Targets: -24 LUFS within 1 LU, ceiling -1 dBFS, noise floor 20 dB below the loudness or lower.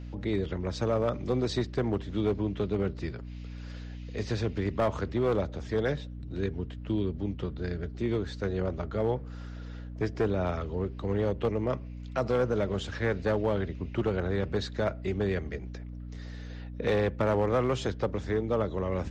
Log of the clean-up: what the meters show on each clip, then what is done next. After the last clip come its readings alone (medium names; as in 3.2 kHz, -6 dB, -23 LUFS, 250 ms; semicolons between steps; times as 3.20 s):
clipped samples 1.1%; clipping level -20.0 dBFS; hum 60 Hz; highest harmonic 300 Hz; hum level -38 dBFS; loudness -31.0 LUFS; peak level -20.0 dBFS; loudness target -24.0 LUFS
-> clip repair -20 dBFS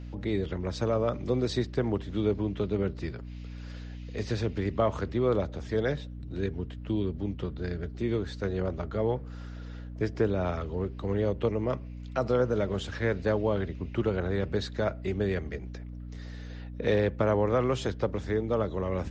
clipped samples 0.0%; hum 60 Hz; highest harmonic 300 Hz; hum level -38 dBFS
-> hum notches 60/120/180/240/300 Hz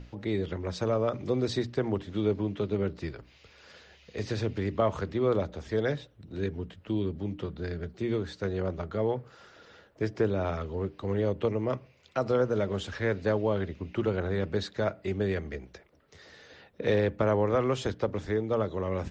hum not found; loudness -30.5 LUFS; peak level -13.0 dBFS; loudness target -24.0 LUFS
-> trim +6.5 dB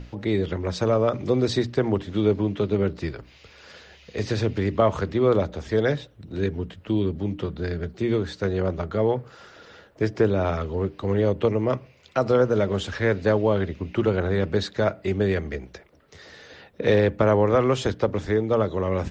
loudness -24.0 LUFS; peak level -6.5 dBFS; noise floor -53 dBFS